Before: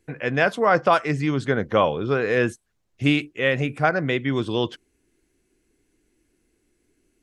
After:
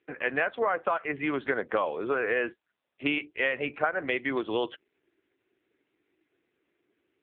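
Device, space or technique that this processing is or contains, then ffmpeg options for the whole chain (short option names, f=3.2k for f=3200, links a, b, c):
voicemail: -af "highpass=330,lowpass=3k,equalizer=f=160:w=0.46:g=-6,acompressor=threshold=-26dB:ratio=8,volume=3.5dB" -ar 8000 -c:a libopencore_amrnb -b:a 5900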